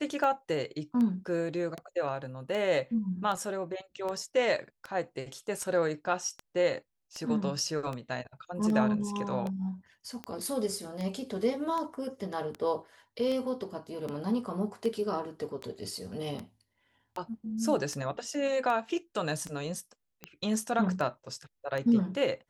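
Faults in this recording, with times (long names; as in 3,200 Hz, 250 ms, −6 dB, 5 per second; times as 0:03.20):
scratch tick 78 rpm −23 dBFS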